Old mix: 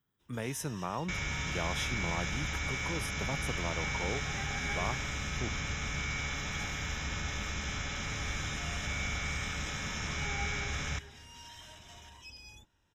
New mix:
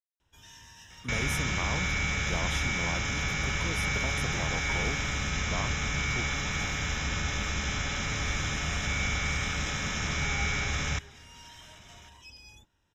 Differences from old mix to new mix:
speech: entry +0.75 s; second sound +5.5 dB

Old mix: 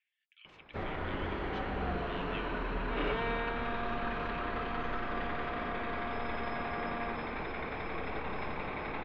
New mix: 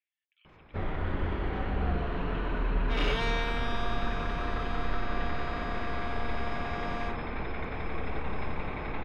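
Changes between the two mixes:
speech -9.5 dB; first sound: add bass shelf 150 Hz +11 dB; second sound: remove distance through air 480 m

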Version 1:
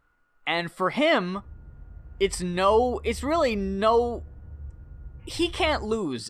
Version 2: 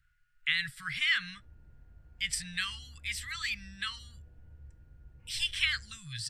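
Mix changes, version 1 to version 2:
speech: add Chebyshev band-stop 140–1600 Hz, order 4; background -12.0 dB

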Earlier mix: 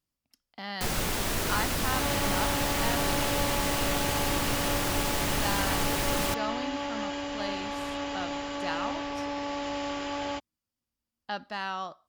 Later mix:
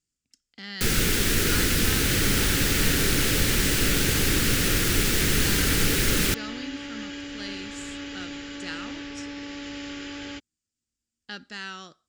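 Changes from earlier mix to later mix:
speech: add resonant low-pass 7.5 kHz, resonance Q 4.1; first sound +7.5 dB; master: add high-order bell 810 Hz -14.5 dB 1.2 oct

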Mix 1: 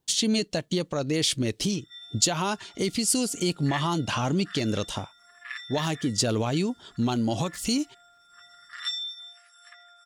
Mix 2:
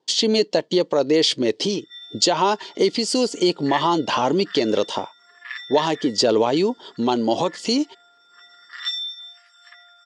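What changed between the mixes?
speech: add peaking EQ 450 Hz +12.5 dB 1.5 oct; master: add cabinet simulation 210–7300 Hz, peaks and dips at 940 Hz +9 dB, 1.9 kHz +5 dB, 3.2 kHz +6 dB, 4.7 kHz +8 dB

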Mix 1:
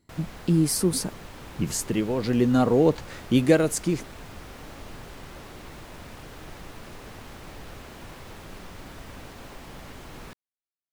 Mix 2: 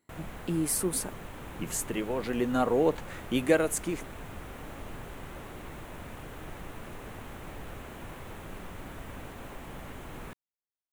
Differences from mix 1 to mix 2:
speech: add high-pass 630 Hz 6 dB/octave; master: add peaking EQ 4.9 kHz -11.5 dB 0.79 oct

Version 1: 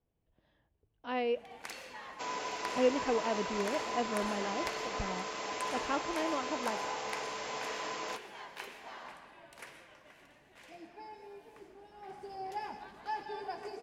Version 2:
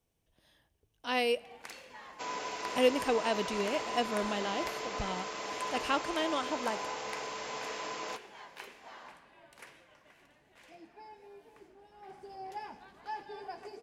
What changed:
speech: remove tape spacing loss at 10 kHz 36 dB; first sound: send -9.0 dB

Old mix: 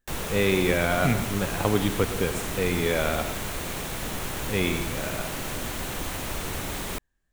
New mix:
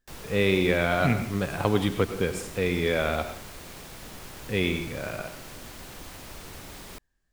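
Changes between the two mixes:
background -11.0 dB; master: add peaking EQ 4.9 kHz +5.5 dB 0.39 oct

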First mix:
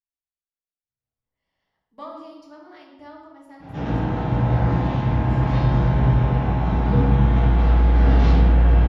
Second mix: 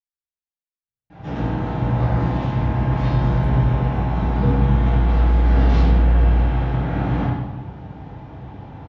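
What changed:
speech -3.0 dB; background: entry -2.50 s

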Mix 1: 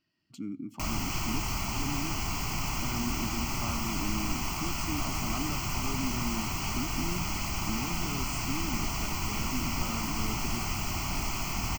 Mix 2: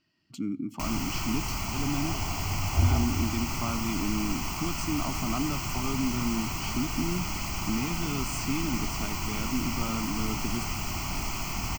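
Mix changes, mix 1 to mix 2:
speech +5.5 dB; second sound: unmuted

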